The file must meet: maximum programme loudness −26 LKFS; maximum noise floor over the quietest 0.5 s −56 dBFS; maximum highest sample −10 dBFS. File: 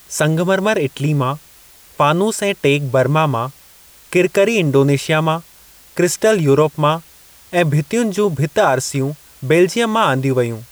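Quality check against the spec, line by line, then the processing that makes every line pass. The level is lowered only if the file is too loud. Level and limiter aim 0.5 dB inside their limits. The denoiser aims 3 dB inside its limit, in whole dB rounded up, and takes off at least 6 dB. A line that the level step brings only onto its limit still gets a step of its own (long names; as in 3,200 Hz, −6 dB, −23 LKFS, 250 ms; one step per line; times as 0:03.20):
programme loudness −16.5 LKFS: out of spec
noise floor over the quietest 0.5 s −45 dBFS: out of spec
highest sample −3.5 dBFS: out of spec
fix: broadband denoise 6 dB, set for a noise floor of −45 dBFS
level −10 dB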